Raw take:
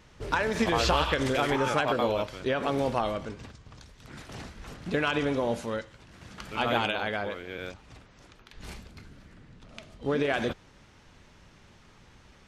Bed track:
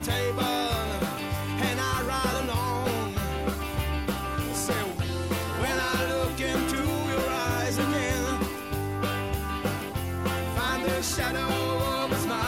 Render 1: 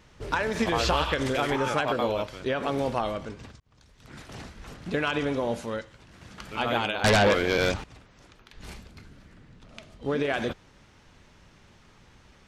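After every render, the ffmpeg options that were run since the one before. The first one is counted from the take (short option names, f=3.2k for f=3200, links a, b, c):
-filter_complex "[0:a]asettb=1/sr,asplit=3[a][b][c];[a]atrim=end=7.044[d];[b]atrim=start=7.04:end=7.84,asetpts=PTS-STARTPTS,afade=t=in:d=0.004:c=qsin,afade=t=out:st=0.796:d=0.004:c=qsin,aeval=exprs='0.168*sin(PI/2*4.47*val(0)/0.168)':c=same[e];[c]atrim=start=7.836[f];[d][e]acrossfade=d=0.004:c1=hsin:c2=qsin[g];[g][f]acrossfade=d=0.004:c1=qsin:c2=hsin,asplit=2[h][i];[h]atrim=end=3.6,asetpts=PTS-STARTPTS,afade=t=out:st=3.596:d=0.004:c=hsin[j];[i]atrim=start=3.6,asetpts=PTS-STARTPTS,afade=t=in:d=0.55[k];[j][k]concat=n=2:v=0:a=1"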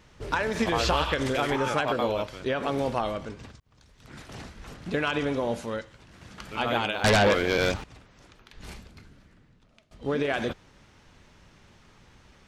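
-filter_complex "[0:a]asettb=1/sr,asplit=3[a][b][c];[a]atrim=end=6.924[d];[b]atrim=start=6.92:end=7.82,asetpts=PTS-STARTPTS,afade=t=in:d=0.004:c=qsin,afade=t=out:st=0.896:d=0.004:c=qsin,aeval=exprs='sgn(val(0))*max(abs(val(0))-0.00188,0)':c=same[e];[c]atrim=start=7.816[f];[d][e]acrossfade=d=0.004:c1=hsin:c2=qsin[g];[g][f]acrossfade=d=0.004:c1=qsin:c2=hsin,asplit=2[h][i];[h]atrim=end=9.91,asetpts=PTS-STARTPTS,afade=t=out:st=8.76:d=1.15:silence=0.0944061[j];[i]atrim=start=9.91,asetpts=PTS-STARTPTS,afade=t=in:d=0.004:c=hsin:silence=0.0944061[k];[j][k]concat=n=2:v=0:a=1"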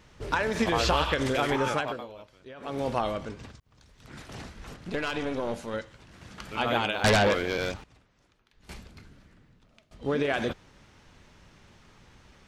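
-filter_complex "[0:a]asettb=1/sr,asplit=3[a][b][c];[a]atrim=end=4.764[d];[b]atrim=start=4.76:end=5.74,asetpts=PTS-STARTPTS,afade=t=in:d=0.004:c=qsin,afade=t=out:st=0.976:d=0.004:c=qsin,aeval=exprs='(tanh(14.1*val(0)+0.6)-tanh(0.6))/14.1':c=same[e];[c]atrim=start=5.736[f];[d][e]acrossfade=d=0.004:c1=hsin:c2=qsin[g];[g][f]acrossfade=d=0.004:c1=qsin:c2=hsin,asplit=4[h][i][j][k];[h]atrim=end=2.06,asetpts=PTS-STARTPTS,afade=t=out:st=1.68:d=0.38:silence=0.133352[l];[i]atrim=start=2.06:end=2.56,asetpts=PTS-STARTPTS,volume=-17.5dB[m];[j]atrim=start=2.56:end=8.69,asetpts=PTS-STARTPTS,afade=t=in:d=0.38:silence=0.133352,afade=t=out:st=4.46:d=1.67:c=qua:silence=0.177828[n];[k]atrim=start=8.69,asetpts=PTS-STARTPTS,afade=t=in:d=0.004:c=hsin:silence=0.177828[o];[l][m][n][o]concat=n=4:v=0:a=1"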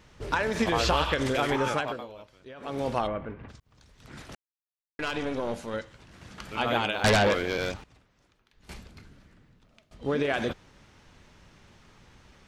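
-filter_complex "[0:a]asplit=3[a][b][c];[a]afade=t=out:st=3.06:d=0.02[d];[b]lowpass=f=2.3k:w=0.5412,lowpass=f=2.3k:w=1.3066,afade=t=in:st=3.06:d=0.02,afade=t=out:st=3.48:d=0.02[e];[c]afade=t=in:st=3.48:d=0.02[f];[d][e][f]amix=inputs=3:normalize=0,asplit=3[g][h][i];[g]atrim=end=4.35,asetpts=PTS-STARTPTS,afade=t=out:st=4.346:d=0.004:c=hsin[j];[h]atrim=start=4.35:end=4.99,asetpts=PTS-STARTPTS,volume=0[k];[i]atrim=start=4.99,asetpts=PTS-STARTPTS,afade=t=in:d=0.004:c=hsin[l];[j][k][l]concat=n=3:v=0:a=1"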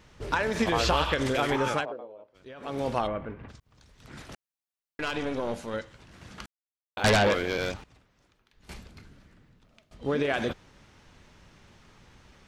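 -filter_complex "[0:a]asplit=3[a][b][c];[a]afade=t=out:st=1.84:d=0.02[d];[b]bandpass=f=500:t=q:w=1.5,afade=t=in:st=1.84:d=0.02,afade=t=out:st=2.34:d=0.02[e];[c]afade=t=in:st=2.34:d=0.02[f];[d][e][f]amix=inputs=3:normalize=0,asplit=3[g][h][i];[g]atrim=end=6.46,asetpts=PTS-STARTPTS,afade=t=out:st=6.456:d=0.004:c=hsin[j];[h]atrim=start=6.46:end=6.97,asetpts=PTS-STARTPTS,volume=0[k];[i]atrim=start=6.97,asetpts=PTS-STARTPTS,afade=t=in:d=0.004:c=hsin[l];[j][k][l]concat=n=3:v=0:a=1"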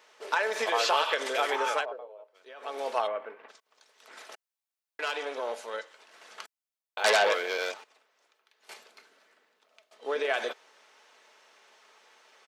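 -af "highpass=f=460:w=0.5412,highpass=f=460:w=1.3066,aecho=1:1:4.6:0.3"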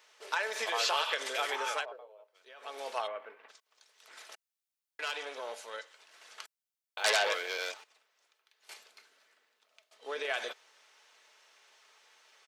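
-af "highpass=f=690:p=1,equalizer=f=890:w=0.42:g=-4.5"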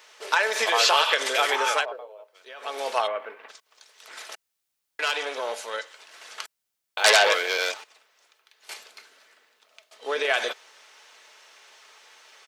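-af "volume=10.5dB"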